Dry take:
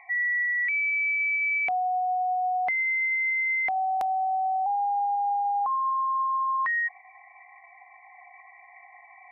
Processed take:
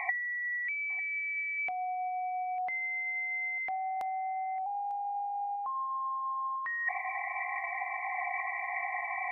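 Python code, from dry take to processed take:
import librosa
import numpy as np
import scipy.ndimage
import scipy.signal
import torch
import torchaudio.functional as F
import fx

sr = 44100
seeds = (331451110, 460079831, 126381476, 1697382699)

p1 = fx.over_compress(x, sr, threshold_db=-34.0, ratio=-0.5)
p2 = p1 + fx.echo_single(p1, sr, ms=898, db=-17.0, dry=0)
y = p2 * librosa.db_to_amplitude(4.0)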